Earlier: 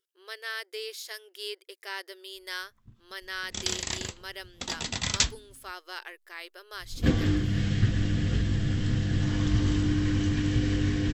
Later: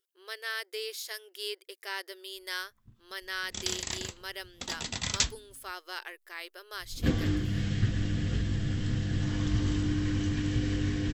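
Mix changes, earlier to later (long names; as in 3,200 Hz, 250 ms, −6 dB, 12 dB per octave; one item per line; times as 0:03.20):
background −3.5 dB
master: add high-shelf EQ 11,000 Hz +5.5 dB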